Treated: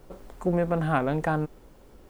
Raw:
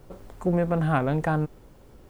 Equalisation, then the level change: bell 110 Hz -8 dB 0.88 oct; 0.0 dB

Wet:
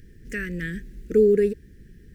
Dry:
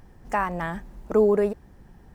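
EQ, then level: elliptic band-stop 440–1700 Hz, stop band 50 dB; +2.5 dB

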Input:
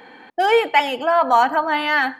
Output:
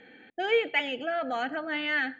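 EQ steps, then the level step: synth low-pass 6400 Hz, resonance Q 9; air absorption 150 m; fixed phaser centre 2400 Hz, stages 4; -5.5 dB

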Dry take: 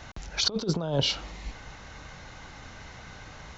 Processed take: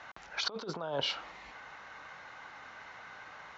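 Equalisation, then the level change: band-pass 1300 Hz, Q 1; +1.0 dB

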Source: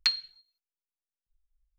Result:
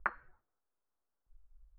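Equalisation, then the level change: steep low-pass 1500 Hz 36 dB/oct; air absorption 460 m; bell 160 Hz -6.5 dB 1.4 oct; +14.0 dB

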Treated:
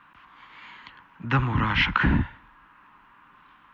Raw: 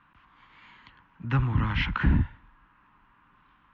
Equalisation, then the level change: low shelf 180 Hz -12 dB; +8.0 dB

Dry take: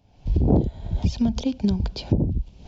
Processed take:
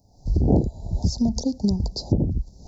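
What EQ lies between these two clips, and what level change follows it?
inverse Chebyshev band-stop 1300–3200 Hz, stop band 40 dB; high shelf 2800 Hz +10.5 dB; 0.0 dB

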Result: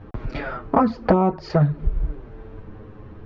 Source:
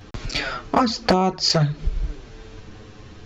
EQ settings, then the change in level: LPF 1200 Hz 12 dB/oct; notch 730 Hz, Q 22; +2.0 dB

